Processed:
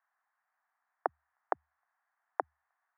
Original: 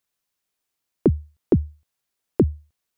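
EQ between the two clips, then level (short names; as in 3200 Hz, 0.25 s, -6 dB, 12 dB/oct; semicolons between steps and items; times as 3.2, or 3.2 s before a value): elliptic band-pass 730–1800 Hz, stop band 60 dB; +10.0 dB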